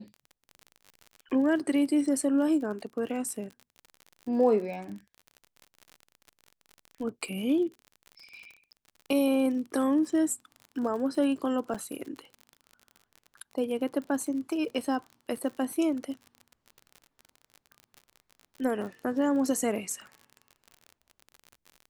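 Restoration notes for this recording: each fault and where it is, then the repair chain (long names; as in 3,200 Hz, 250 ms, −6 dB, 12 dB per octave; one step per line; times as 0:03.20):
surface crackle 46 per second −37 dBFS
0:11.74–0:11.75: drop-out 5.5 ms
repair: click removal
repair the gap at 0:11.74, 5.5 ms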